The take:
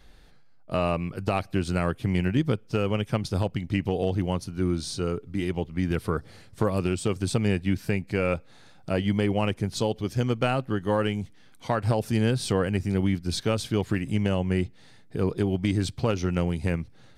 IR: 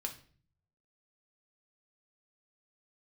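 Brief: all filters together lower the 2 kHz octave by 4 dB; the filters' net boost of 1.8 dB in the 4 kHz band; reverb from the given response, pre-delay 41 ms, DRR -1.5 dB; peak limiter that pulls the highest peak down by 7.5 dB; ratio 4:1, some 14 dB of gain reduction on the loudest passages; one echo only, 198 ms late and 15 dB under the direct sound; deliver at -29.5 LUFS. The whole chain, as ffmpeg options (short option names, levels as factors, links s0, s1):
-filter_complex "[0:a]equalizer=f=2000:t=o:g=-7,equalizer=f=4000:t=o:g=5,acompressor=threshold=0.0141:ratio=4,alimiter=level_in=2:limit=0.0631:level=0:latency=1,volume=0.501,aecho=1:1:198:0.178,asplit=2[s0][s1];[1:a]atrim=start_sample=2205,adelay=41[s2];[s1][s2]afir=irnorm=-1:irlink=0,volume=1.26[s3];[s0][s3]amix=inputs=2:normalize=0,volume=2.51"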